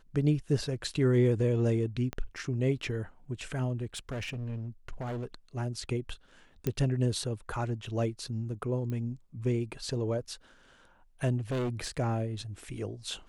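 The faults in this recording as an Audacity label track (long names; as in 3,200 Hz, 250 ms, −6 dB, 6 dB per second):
2.130000	2.130000	click −21 dBFS
3.850000	5.260000	clipping −32.5 dBFS
6.670000	6.670000	click −16 dBFS
8.900000	8.900000	click −26 dBFS
11.370000	11.900000	clipping −28.5 dBFS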